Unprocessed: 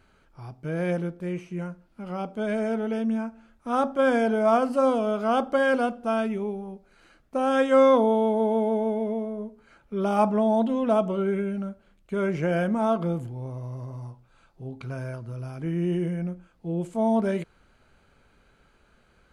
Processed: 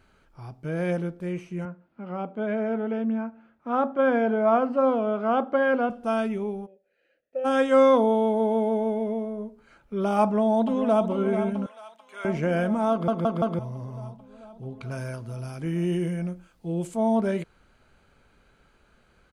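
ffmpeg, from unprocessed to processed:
-filter_complex "[0:a]asettb=1/sr,asplit=3[a][b][c];[a]atrim=end=1.654[d];[b]atrim=start=1.65:end=5.9,asetpts=PTS-STARTPTS,afade=t=in:d=0.004:c=qsin,afade=t=out:st=4.246:d=0.004:c=qsin,highpass=130,lowpass=2.3k[e];[c]atrim=start=5.896[f];[d][e]acrossfade=d=0.004:c1=hsin:c2=qsin[g];[g][f]acrossfade=d=0.004:c1=qsin:c2=hsin,asplit=3[h][i][j];[h]afade=t=out:st=6.65:d=0.02[k];[i]asplit=3[l][m][n];[l]bandpass=f=530:t=q:w=8,volume=0dB[o];[m]bandpass=f=1.84k:t=q:w=8,volume=-6dB[p];[n]bandpass=f=2.48k:t=q:w=8,volume=-9dB[q];[o][p][q]amix=inputs=3:normalize=0,afade=t=in:st=6.65:d=0.02,afade=t=out:st=7.44:d=0.02[r];[j]afade=t=in:st=7.44:d=0.02[s];[k][r][s]amix=inputs=3:normalize=0,asplit=2[t][u];[u]afade=t=in:st=10.23:d=0.01,afade=t=out:st=11.08:d=0.01,aecho=0:1:440|880|1320|1760|2200|2640|3080|3520|3960|4400|4840|5280:0.334965|0.251224|0.188418|0.141314|0.105985|0.0794889|0.0596167|0.0447125|0.0335344|0.0251508|0.0188631|0.0141473[v];[t][v]amix=inputs=2:normalize=0,asettb=1/sr,asplit=3[w][x][y];[w]atrim=end=11.664[z];[x]atrim=start=11.66:end=12.25,asetpts=PTS-STARTPTS,afade=t=in:d=0.004:c=qsin,afade=t=out:st=0.586:d=0.004:c=qsin,highpass=1.4k[aa];[y]atrim=start=12.246[ab];[z][aa]acrossfade=d=0.004:c1=hsin:c2=qsin[ac];[ac][ab]acrossfade=d=0.004:c1=qsin:c2=hsin,asettb=1/sr,asplit=3[ad][ae][af];[ad]atrim=end=14.914[ag];[ae]atrim=start=14.91:end=16.95,asetpts=PTS-STARTPTS,afade=t=in:d=0.004:c=qsin,afade=t=out:st=2.036:d=0.004:c=qsin,highshelf=f=3.2k:g=9.5[ah];[af]atrim=start=16.946[ai];[ag][ah]acrossfade=d=0.004:c1=hsin:c2=qsin[aj];[aj][ai]acrossfade=d=0.004:c1=qsin:c2=hsin,asplit=5[ak][al][am][an][ao];[ak]atrim=end=13.082[ap];[al]atrim=start=12.908:end=13.082[aq];[am]atrim=start=12.908:end=13.082[ar];[an]atrim=start=12.908:end=13.082[as];[ao]atrim=start=13.588[at];[ap][aq]acrossfade=d=0.004:c1=hsin:c2=hsin[au];[au][ar]acrossfade=d=0.004:c1=hsin:c2=hsin[av];[av][as]acrossfade=d=0.004:c1=hsin:c2=hsin[aw];[aw][at]acrossfade=d=0.004:c1=hsin:c2=hsin"

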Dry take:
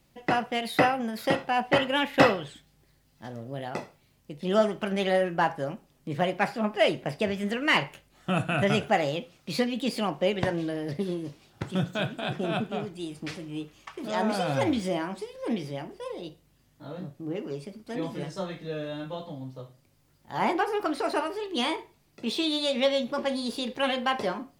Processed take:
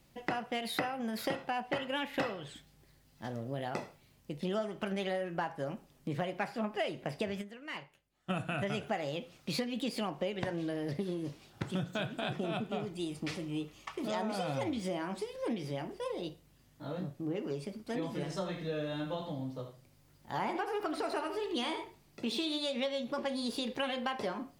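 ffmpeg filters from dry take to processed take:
-filter_complex "[0:a]asettb=1/sr,asplit=3[a][b][c];[a]atrim=end=12.344[d];[b]atrim=start=12.34:end=14.86,asetpts=PTS-STARTPTS,afade=t=in:d=0.004:c=qsin,afade=t=out:st=2.516:d=0.004:c=qsin,bandreject=f=1.6k:w=8.5[e];[c]atrim=start=14.856[f];[d][e]acrossfade=d=0.004:c1=hsin:c2=qsin[g];[g][f]acrossfade=d=0.004:c1=qsin:c2=hsin,asettb=1/sr,asplit=3[h][i][j];[h]atrim=end=18.174[k];[i]atrim=start=18.17:end=22.58,asetpts=PTS-STARTPTS,afade=t=in:d=0.004:c=qsin,afade=t=out:st=4.406:d=0.004:c=qsin,aecho=1:1:80:0.316,atrim=end_sample=194481[l];[j]atrim=start=22.576[m];[k][l]acrossfade=d=0.004:c1=hsin:c2=qsin[n];[n][m]acrossfade=d=0.004:c1=qsin:c2=hsin,asplit=3[o][p][q];[o]atrim=end=7.54,asetpts=PTS-STARTPTS,afade=t=out:st=7.41:d=0.13:c=exp:silence=0.105925[r];[p]atrim=start=7.54:end=8.18,asetpts=PTS-STARTPTS,volume=-19.5dB[s];[q]atrim=start=8.18,asetpts=PTS-STARTPTS,afade=t=in:d=0.13:c=exp:silence=0.105925[t];[r][s][t]concat=n=3:v=0:a=1,acompressor=threshold=-32dB:ratio=6"

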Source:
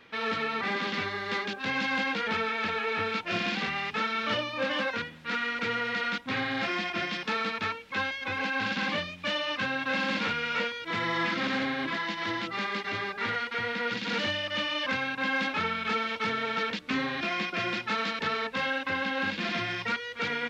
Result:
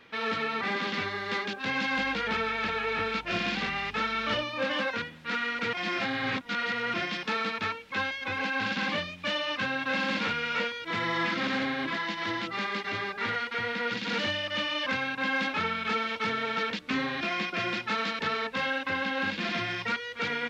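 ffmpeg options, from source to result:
-filter_complex "[0:a]asettb=1/sr,asplit=3[a][b][c];[a]atrim=end=1.974[d];[b]atrim=start=1.97:end=4.43,asetpts=PTS-STARTPTS,afade=t=in:d=0.004:c=qsin,afade=t=out:st=2.456:d=0.004:c=qsin,aeval=exprs='val(0)+0.00316*(sin(2*PI*50*n/s)+sin(2*PI*2*50*n/s)/2+sin(2*PI*3*50*n/s)/3+sin(2*PI*4*50*n/s)/4+sin(2*PI*5*50*n/s)/5)':c=same[e];[c]atrim=start=4.426[f];[d][e]acrossfade=d=0.004:c1=hsin:c2=qsin[g];[g][f]acrossfade=d=0.004:c1=qsin:c2=hsin,asplit=3[h][i][j];[h]atrim=end=5.732[k];[i]atrim=start=5.728:end=6.942,asetpts=PTS-STARTPTS,areverse[l];[j]atrim=start=6.938[m];[k][l]acrossfade=d=0.004:c1=hsin:c2=hsin[n];[n][m]acrossfade=d=0.004:c1=hsin:c2=hsin"

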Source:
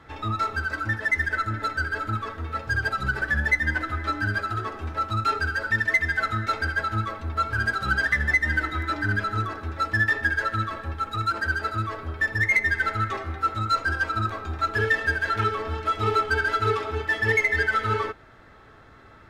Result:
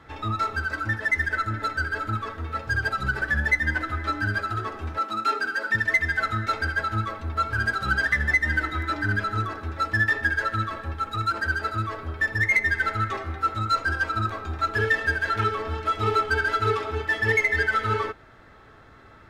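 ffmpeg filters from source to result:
-filter_complex "[0:a]asettb=1/sr,asplit=3[a][b][c];[a]atrim=end=4.984[d];[b]atrim=start=4.98:end=5.75,asetpts=PTS-STARTPTS,afade=t=in:d=0.004:c=qsin,afade=t=out:st=0.766:d=0.004:c=qsin,highpass=f=210:w=0.5412,highpass=f=210:w=1.3066[e];[c]atrim=start=5.746[f];[d][e]acrossfade=d=0.004:c1=hsin:c2=qsin[g];[g][f]acrossfade=d=0.004:c1=qsin:c2=hsin"

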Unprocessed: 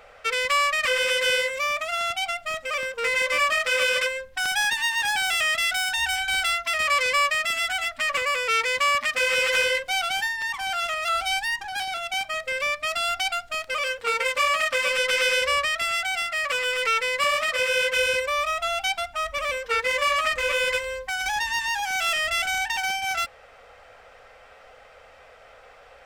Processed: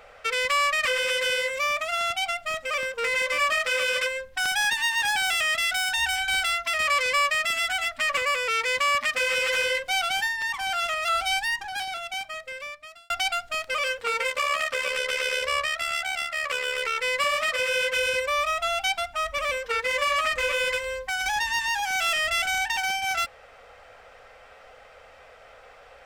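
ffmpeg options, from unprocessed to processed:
-filter_complex "[0:a]asettb=1/sr,asplit=3[a][b][c];[a]atrim=end=14.304[d];[b]atrim=start=14.3:end=17.01,asetpts=PTS-STARTPTS,afade=t=in:d=0.004:c=qsin,afade=t=out:st=2.706:d=0.004:c=qsin,tremolo=f=71:d=0.571[e];[c]atrim=start=17.006[f];[d][e]acrossfade=d=0.004:c1=hsin:c2=qsin[g];[g][f]acrossfade=d=0.004:c1=qsin:c2=hsin,asplit=2[h][i];[h]atrim=end=13.1,asetpts=PTS-STARTPTS,afade=t=out:st=11.49:d=1.61[j];[i]atrim=start=13.1,asetpts=PTS-STARTPTS,afade=t=in:d=0.004:c=hsin[k];[j][k]concat=n=2:v=0:a=1,alimiter=limit=-15dB:level=0:latency=1:release=116"

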